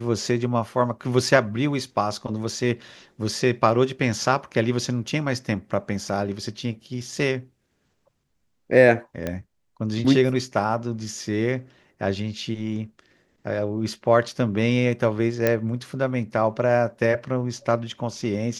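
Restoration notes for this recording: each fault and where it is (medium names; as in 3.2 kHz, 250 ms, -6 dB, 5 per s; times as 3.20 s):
9.27 s: pop -14 dBFS
15.47 s: pop -7 dBFS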